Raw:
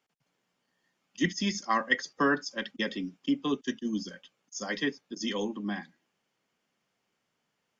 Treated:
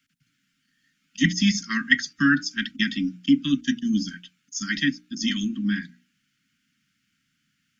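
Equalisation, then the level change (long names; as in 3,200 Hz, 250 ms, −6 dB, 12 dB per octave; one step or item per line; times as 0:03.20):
Chebyshev band-stop filter 280–1,400 Hz, order 4
low-shelf EQ 340 Hz +4 dB
mains-hum notches 60/120/180/240/300/360 Hz
+8.5 dB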